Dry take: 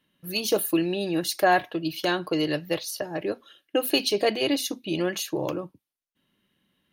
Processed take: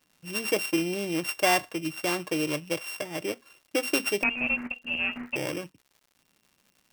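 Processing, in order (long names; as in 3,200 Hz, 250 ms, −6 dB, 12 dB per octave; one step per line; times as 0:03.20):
samples sorted by size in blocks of 16 samples
0:04.23–0:05.36: voice inversion scrambler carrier 3,000 Hz
surface crackle 180 per second −45 dBFS
level −3 dB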